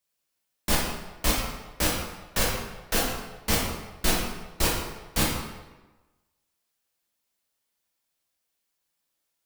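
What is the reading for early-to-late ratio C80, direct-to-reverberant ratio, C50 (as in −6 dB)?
4.0 dB, −4.5 dB, 1.0 dB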